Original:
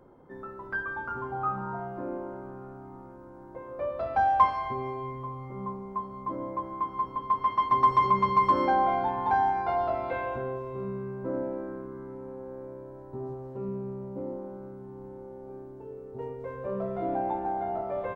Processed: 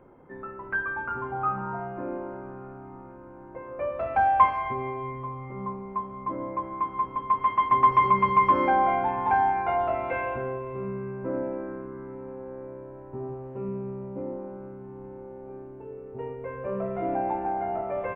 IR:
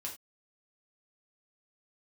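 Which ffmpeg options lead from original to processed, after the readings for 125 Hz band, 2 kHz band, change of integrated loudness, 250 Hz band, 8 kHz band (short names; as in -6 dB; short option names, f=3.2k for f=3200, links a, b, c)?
+1.5 dB, +4.5 dB, +2.5 dB, +1.5 dB, n/a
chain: -af "highshelf=f=3.3k:t=q:w=3:g=-9,volume=1.5dB"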